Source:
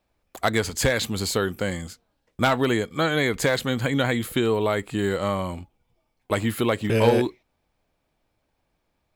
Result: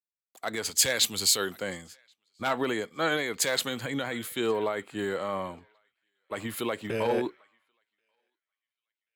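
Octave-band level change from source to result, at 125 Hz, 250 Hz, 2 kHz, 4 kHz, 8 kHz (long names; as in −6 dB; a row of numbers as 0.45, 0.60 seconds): −15.5, −9.5, −5.5, 0.0, +4.5 decibels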